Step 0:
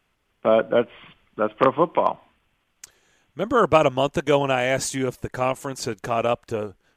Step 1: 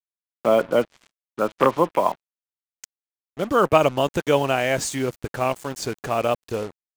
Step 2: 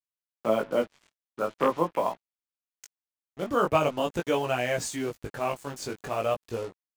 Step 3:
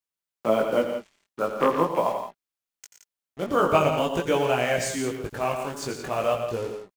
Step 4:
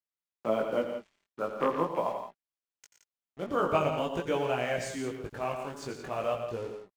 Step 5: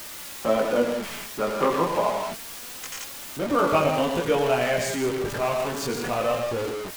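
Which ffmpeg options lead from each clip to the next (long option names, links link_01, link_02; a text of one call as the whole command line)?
ffmpeg -i in.wav -af "acrusher=bits=5:mix=0:aa=0.5" out.wav
ffmpeg -i in.wav -af "flanger=delay=16.5:depth=4.6:speed=0.44,volume=-3.5dB" out.wav
ffmpeg -i in.wav -af "aecho=1:1:85|92|118|170|175:0.251|0.126|0.316|0.316|0.1,volume=2.5dB" out.wav
ffmpeg -i in.wav -af "highshelf=frequency=6200:gain=-8.5,volume=-6.5dB" out.wav
ffmpeg -i in.wav -af "aeval=exprs='val(0)+0.5*0.0251*sgn(val(0))':channel_layout=same,flanger=delay=3.2:depth=2:regen=62:speed=0.29:shape=triangular,volume=9dB" out.wav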